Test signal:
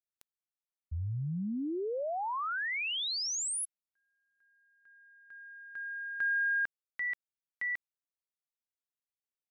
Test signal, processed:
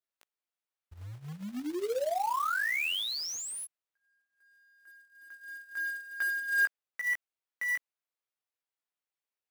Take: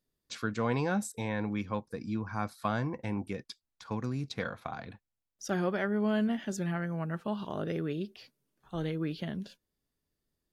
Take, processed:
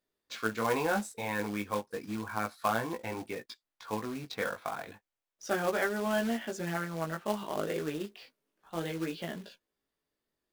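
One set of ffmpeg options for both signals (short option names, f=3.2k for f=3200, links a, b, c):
-af "bass=f=250:g=-14,treble=f=4k:g=-8,flanger=delay=17.5:depth=2.3:speed=0.32,acontrast=69,acrusher=bits=3:mode=log:mix=0:aa=0.000001"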